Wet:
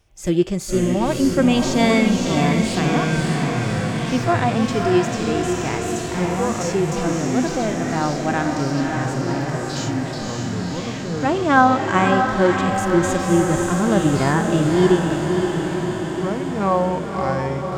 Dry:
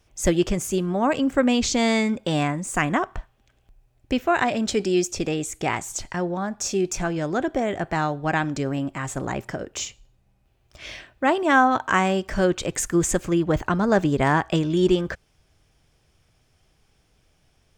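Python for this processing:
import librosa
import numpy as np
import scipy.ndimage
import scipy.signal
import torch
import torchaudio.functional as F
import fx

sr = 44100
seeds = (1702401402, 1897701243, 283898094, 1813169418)

y = fx.echo_pitch(x, sr, ms=346, semitones=-6, count=2, db_per_echo=-6.0)
y = fx.echo_diffused(y, sr, ms=566, feedback_pct=70, wet_db=-5)
y = fx.hpss(y, sr, part='percussive', gain_db=-13)
y = y * librosa.db_to_amplitude(4.0)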